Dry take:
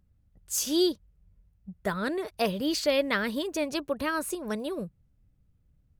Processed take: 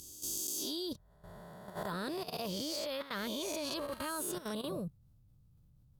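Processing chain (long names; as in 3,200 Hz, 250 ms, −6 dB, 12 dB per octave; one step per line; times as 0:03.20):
peak hold with a rise ahead of every peak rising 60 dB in 1.06 s
reversed playback
downward compressor 6 to 1, threshold −37 dBFS, peak gain reduction 17 dB
reversed playback
graphic EQ with 10 bands 125 Hz +9 dB, 1,000 Hz +6 dB, 2,000 Hz −7 dB, 4,000 Hz +6 dB, 16,000 Hz +11 dB
output level in coarse steps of 13 dB
level +1 dB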